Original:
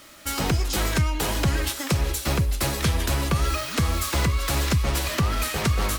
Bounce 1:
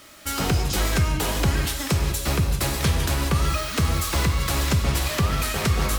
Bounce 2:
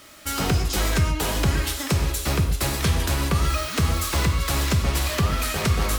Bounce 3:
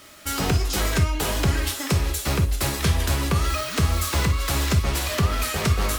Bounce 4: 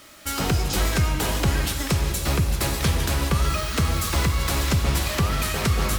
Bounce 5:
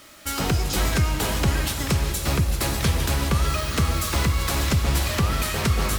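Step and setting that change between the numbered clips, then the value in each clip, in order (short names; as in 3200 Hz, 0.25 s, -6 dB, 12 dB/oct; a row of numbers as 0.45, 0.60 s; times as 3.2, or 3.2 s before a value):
non-linear reverb, gate: 220, 150, 80, 340, 510 ms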